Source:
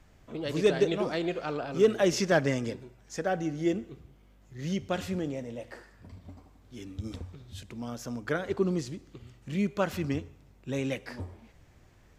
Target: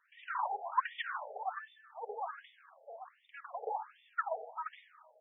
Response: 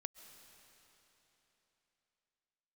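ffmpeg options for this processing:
-filter_complex "[1:a]atrim=start_sample=2205,asetrate=52920,aresample=44100[s0];[0:a][s0]afir=irnorm=-1:irlink=0,asetrate=103194,aresample=44100,afftfilt=real='re*between(b*sr/1024,580*pow(2600/580,0.5+0.5*sin(2*PI*1.3*pts/sr))/1.41,580*pow(2600/580,0.5+0.5*sin(2*PI*1.3*pts/sr))*1.41)':imag='im*between(b*sr/1024,580*pow(2600/580,0.5+0.5*sin(2*PI*1.3*pts/sr))/1.41,580*pow(2600/580,0.5+0.5*sin(2*PI*1.3*pts/sr))*1.41)':win_size=1024:overlap=0.75,volume=1.5"

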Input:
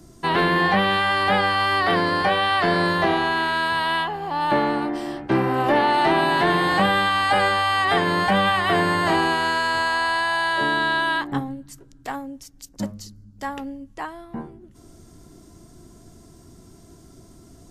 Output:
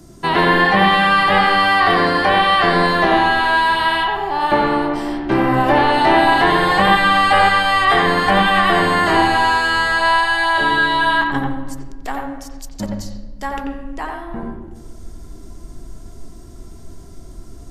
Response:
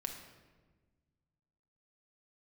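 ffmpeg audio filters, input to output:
-filter_complex "[0:a]asubboost=boost=5:cutoff=57,asplit=2[s0][s1];[1:a]atrim=start_sample=2205,lowpass=3000,adelay=88[s2];[s1][s2]afir=irnorm=-1:irlink=0,volume=0.891[s3];[s0][s3]amix=inputs=2:normalize=0,volume=1.58"

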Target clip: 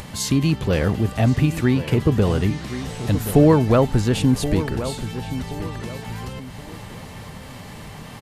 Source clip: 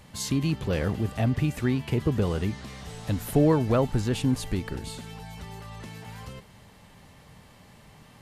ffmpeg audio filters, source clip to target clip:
-filter_complex "[0:a]acompressor=mode=upward:threshold=0.0158:ratio=2.5,asplit=2[s0][s1];[s1]adelay=1075,lowpass=f=2700:p=1,volume=0.266,asplit=2[s2][s3];[s3]adelay=1075,lowpass=f=2700:p=1,volume=0.35,asplit=2[s4][s5];[s5]adelay=1075,lowpass=f=2700:p=1,volume=0.35,asplit=2[s6][s7];[s7]adelay=1075,lowpass=f=2700:p=1,volume=0.35[s8];[s0][s2][s4][s6][s8]amix=inputs=5:normalize=0,volume=2.24"

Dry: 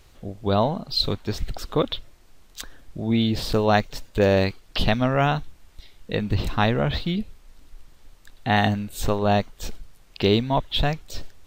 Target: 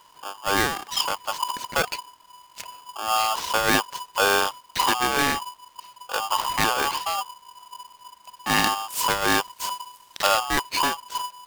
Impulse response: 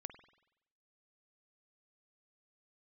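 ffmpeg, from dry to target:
-filter_complex "[0:a]asettb=1/sr,asplit=3[s0][s1][s2];[s0]atrim=end=8.564[s3];[s1]atrim=start=8.56:end=10.27,asetpts=PTS-STARTPTS,afade=t=in:d=0.004:c=qsin,afade=t=out:st=1.706:d=0.004:c=qsin,highshelf=f=4200:g=12[s4];[s2]atrim=start=10.266[s5];[s3][s4]acrossfade=d=0.004:c1=hsin:c2=qsin[s6];[s6][s5]acrossfade=d=0.004:c1=qsin:c2=hsin,aeval=exprs='val(0)*sgn(sin(2*PI*990*n/s))':c=same,volume=0.794"

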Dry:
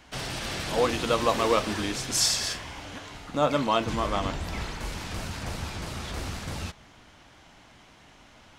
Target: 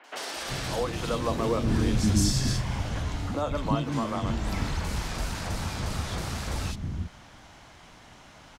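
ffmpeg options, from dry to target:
-filter_complex "[0:a]asettb=1/sr,asplit=3[s0][s1][s2];[s0]atrim=end=1.274[s3];[s1]atrim=start=1.27:end=3.39,asetpts=PTS-STARTPTS,afade=t=in:d=0.004:c=qsin,afade=t=out:st=2.116:d=0.004:c=qsin,lowshelf=f=320:g=11.5[s4];[s2]atrim=start=3.386[s5];[s3][s4]acrossfade=d=0.004:c1=hsin:c2=qsin[s6];[s6][s5]acrossfade=d=0.004:c1=qsin:c2=hsin,acrossover=split=290[s7][s8];[s8]acompressor=threshold=0.0158:ratio=2.5[s9];[s7][s9]amix=inputs=2:normalize=0,acrossover=split=330|2700[s10][s11][s12];[s12]adelay=40[s13];[s10]adelay=360[s14];[s14][s11][s13]amix=inputs=3:normalize=0,volume=1.58"

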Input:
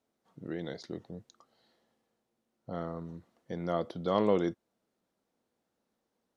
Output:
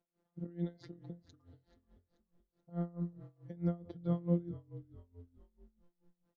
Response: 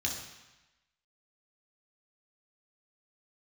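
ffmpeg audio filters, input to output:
-filter_complex "[0:a]aemphasis=mode=reproduction:type=riaa,afftfilt=real='hypot(re,im)*cos(PI*b)':imag='0':win_size=1024:overlap=0.75,acrossover=split=310[s0][s1];[s1]acompressor=threshold=0.00631:ratio=16[s2];[s0][s2]amix=inputs=2:normalize=0,lowshelf=f=170:g=-8,asplit=2[s3][s4];[s4]asplit=4[s5][s6][s7][s8];[s5]adelay=433,afreqshift=-42,volume=0.141[s9];[s6]adelay=866,afreqshift=-84,volume=0.0661[s10];[s7]adelay=1299,afreqshift=-126,volume=0.0313[s11];[s8]adelay=1732,afreqshift=-168,volume=0.0146[s12];[s9][s10][s11][s12]amix=inputs=4:normalize=0[s13];[s3][s13]amix=inputs=2:normalize=0,aeval=exprs='val(0)*pow(10,-22*(0.5-0.5*cos(2*PI*4.6*n/s))/20)':c=same,volume=1.68"

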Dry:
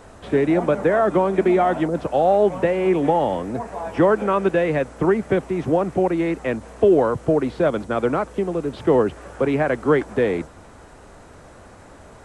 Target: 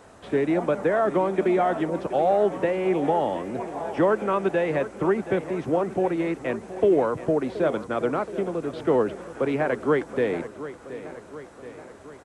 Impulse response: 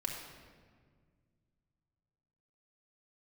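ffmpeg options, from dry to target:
-filter_complex "[0:a]highpass=f=140:p=1,asplit=2[s0][s1];[s1]aecho=0:1:725|1450|2175|2900|3625|4350:0.2|0.118|0.0695|0.041|0.0242|0.0143[s2];[s0][s2]amix=inputs=2:normalize=0,volume=0.631"

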